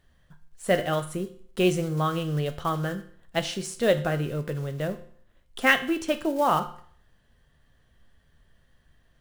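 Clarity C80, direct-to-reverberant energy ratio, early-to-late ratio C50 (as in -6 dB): 16.5 dB, 8.0 dB, 13.0 dB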